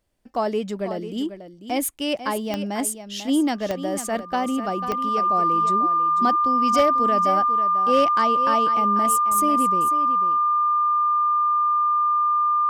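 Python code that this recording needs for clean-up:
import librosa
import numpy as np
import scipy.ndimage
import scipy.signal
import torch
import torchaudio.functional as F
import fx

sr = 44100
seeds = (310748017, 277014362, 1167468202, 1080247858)

y = fx.fix_declip(x, sr, threshold_db=-10.5)
y = fx.fix_declick_ar(y, sr, threshold=10.0)
y = fx.notch(y, sr, hz=1200.0, q=30.0)
y = fx.fix_echo_inverse(y, sr, delay_ms=494, level_db=-11.0)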